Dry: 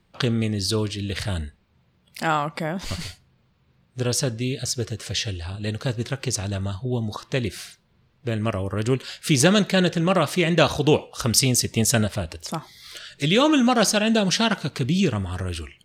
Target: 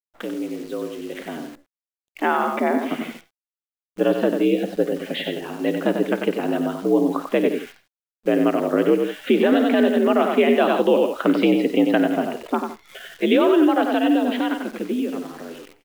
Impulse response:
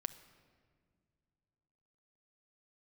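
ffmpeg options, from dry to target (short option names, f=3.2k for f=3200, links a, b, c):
-af "highpass=f=210:t=q:w=0.5412,highpass=f=210:t=q:w=1.307,lowpass=f=3.3k:t=q:w=0.5176,lowpass=f=3.3k:t=q:w=0.7071,lowpass=f=3.3k:t=q:w=1.932,afreqshift=64,afftdn=nr=25:nf=-46,aemphasis=mode=reproduction:type=riaa,aecho=1:1:52|93|164:0.158|0.473|0.158,alimiter=limit=-13.5dB:level=0:latency=1:release=219,dynaudnorm=f=120:g=31:m=15dB,acrusher=bits=7:dc=4:mix=0:aa=0.000001,volume=-5.5dB"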